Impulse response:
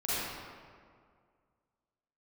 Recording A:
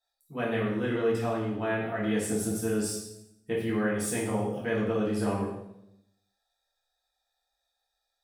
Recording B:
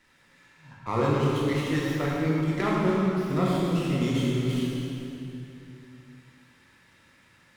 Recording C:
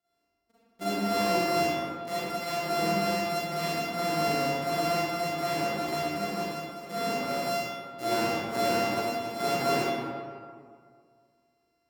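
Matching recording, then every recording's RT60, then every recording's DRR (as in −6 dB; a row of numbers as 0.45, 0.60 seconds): C; 0.80, 2.9, 2.0 seconds; −6.5, −5.5, −11.5 decibels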